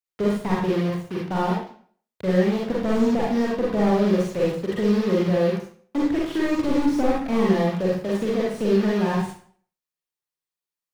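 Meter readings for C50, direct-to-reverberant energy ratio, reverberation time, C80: 0.5 dB, -4.5 dB, 0.50 s, 6.0 dB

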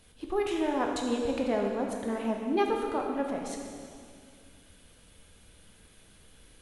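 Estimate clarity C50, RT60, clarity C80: 2.5 dB, 2.2 s, 3.5 dB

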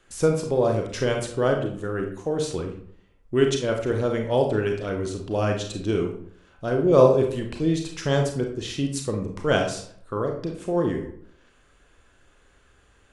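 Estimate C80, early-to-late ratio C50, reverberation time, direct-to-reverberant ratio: 10.0 dB, 6.0 dB, 0.60 s, 2.5 dB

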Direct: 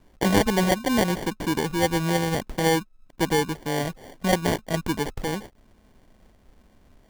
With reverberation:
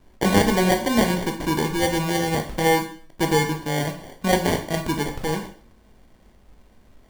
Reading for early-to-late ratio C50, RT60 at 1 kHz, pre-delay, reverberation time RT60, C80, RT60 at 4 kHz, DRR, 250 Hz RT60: 9.5 dB, 0.45 s, 7 ms, 0.50 s, 13.5 dB, 0.45 s, 3.5 dB, 0.50 s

